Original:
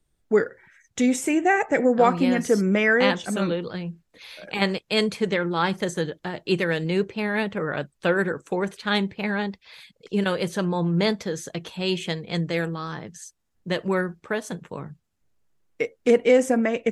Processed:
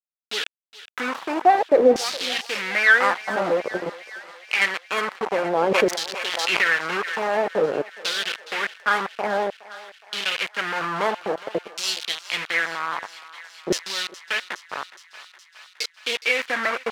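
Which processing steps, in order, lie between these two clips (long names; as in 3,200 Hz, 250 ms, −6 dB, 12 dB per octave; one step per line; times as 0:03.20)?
stylus tracing distortion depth 0.2 ms
high-pass filter 110 Hz 6 dB per octave
in parallel at +1 dB: downward compressor 6 to 1, threshold −32 dBFS, peak gain reduction 18 dB
on the sum: bit reduction 4 bits
auto-filter band-pass saw down 0.51 Hz 380–5,600 Hz
feedback echo with a high-pass in the loop 416 ms, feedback 75%, high-pass 790 Hz, level −16 dB
0:05.53–0:07.30: background raised ahead of every attack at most 34 dB per second
level +7 dB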